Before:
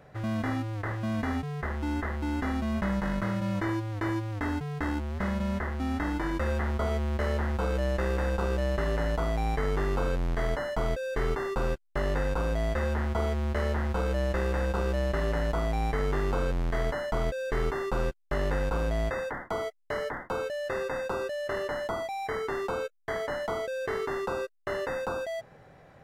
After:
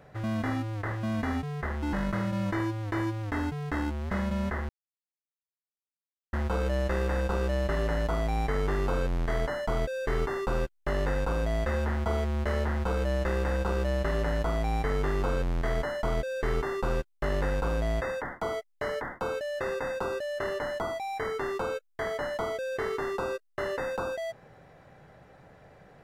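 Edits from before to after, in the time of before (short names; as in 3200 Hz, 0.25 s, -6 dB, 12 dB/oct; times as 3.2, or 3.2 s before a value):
1.93–3.02 cut
5.78–7.42 mute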